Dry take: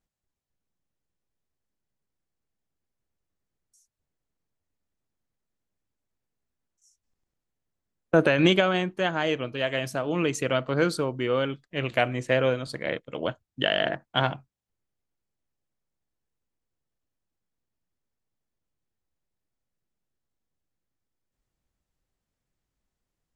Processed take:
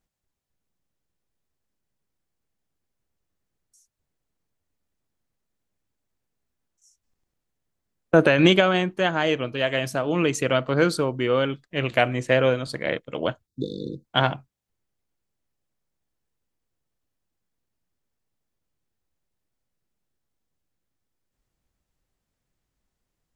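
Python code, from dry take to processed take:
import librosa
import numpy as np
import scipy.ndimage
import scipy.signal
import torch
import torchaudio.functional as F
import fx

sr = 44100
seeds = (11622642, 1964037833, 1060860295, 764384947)

y = fx.brickwall_bandstop(x, sr, low_hz=510.0, high_hz=3500.0, at=(13.46, 14.04), fade=0.02)
y = y * librosa.db_to_amplitude(3.5)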